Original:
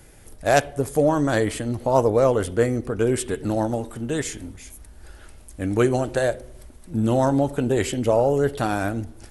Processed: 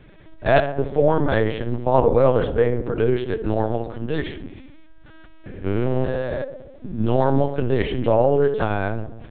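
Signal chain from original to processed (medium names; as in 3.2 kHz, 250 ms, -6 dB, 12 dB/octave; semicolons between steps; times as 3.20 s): 4.47–7.00 s: spectrogram pixelated in time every 200 ms; filtered feedback delay 66 ms, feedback 68%, low-pass 1.4 kHz, level -9 dB; LPC vocoder at 8 kHz pitch kept; trim +1.5 dB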